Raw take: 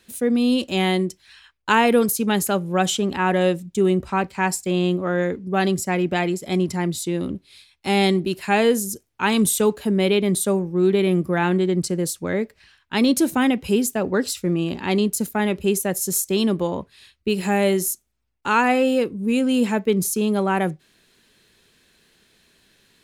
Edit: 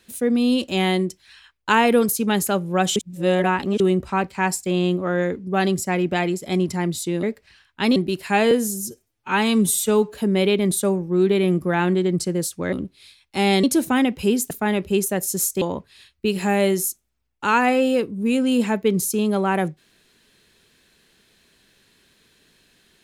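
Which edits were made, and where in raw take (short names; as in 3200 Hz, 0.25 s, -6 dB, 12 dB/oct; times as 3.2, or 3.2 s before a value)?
2.96–3.8 reverse
7.23–8.14 swap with 12.36–13.09
8.69–9.78 stretch 1.5×
13.96–15.24 cut
16.35–16.64 cut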